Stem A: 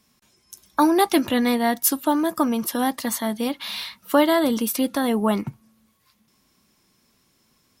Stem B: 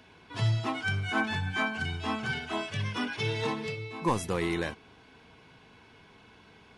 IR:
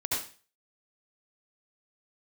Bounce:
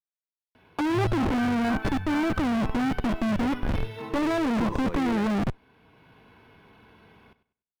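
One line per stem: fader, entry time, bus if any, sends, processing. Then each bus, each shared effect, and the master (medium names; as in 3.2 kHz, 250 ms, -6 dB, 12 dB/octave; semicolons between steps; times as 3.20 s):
+1.0 dB, 0.00 s, no send, no echo send, band-pass filter 300 Hz, Q 0.52; Schmitt trigger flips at -36.5 dBFS
+1.5 dB, 0.55 s, send -23 dB, echo send -14.5 dB, auto duck -9 dB, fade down 1.80 s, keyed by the first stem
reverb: on, RT60 0.35 s, pre-delay 62 ms
echo: feedback delay 98 ms, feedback 26%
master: treble shelf 4.2 kHz -11.5 dB; decimation joined by straight lines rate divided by 3×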